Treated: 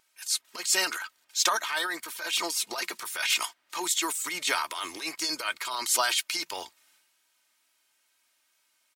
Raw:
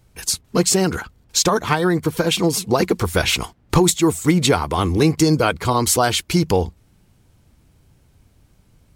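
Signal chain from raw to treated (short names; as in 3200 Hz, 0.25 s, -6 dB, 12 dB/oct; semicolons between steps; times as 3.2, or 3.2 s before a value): HPF 1500 Hz 12 dB/oct; comb 3.2 ms, depth 52%; transient shaper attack -11 dB, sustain +7 dB; wow and flutter 22 cents; gain -3.5 dB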